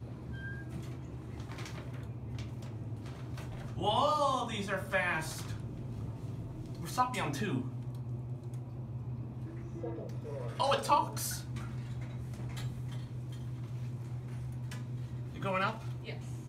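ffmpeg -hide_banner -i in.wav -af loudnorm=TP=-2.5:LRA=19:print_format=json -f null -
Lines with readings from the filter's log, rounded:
"input_i" : "-37.3",
"input_tp" : "-15.3",
"input_lra" : "5.1",
"input_thresh" : "-47.3",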